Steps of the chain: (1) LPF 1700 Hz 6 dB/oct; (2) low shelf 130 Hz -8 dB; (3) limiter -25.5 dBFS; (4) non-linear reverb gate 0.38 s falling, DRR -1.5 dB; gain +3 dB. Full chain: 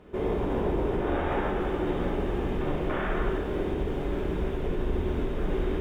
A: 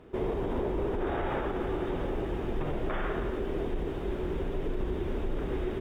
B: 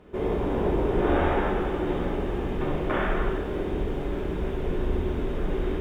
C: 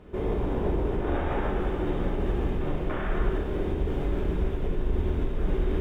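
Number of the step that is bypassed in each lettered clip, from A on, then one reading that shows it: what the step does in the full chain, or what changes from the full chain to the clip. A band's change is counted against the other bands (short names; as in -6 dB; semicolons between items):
4, crest factor change -3.5 dB; 3, crest factor change +2.5 dB; 2, 125 Hz band +4.5 dB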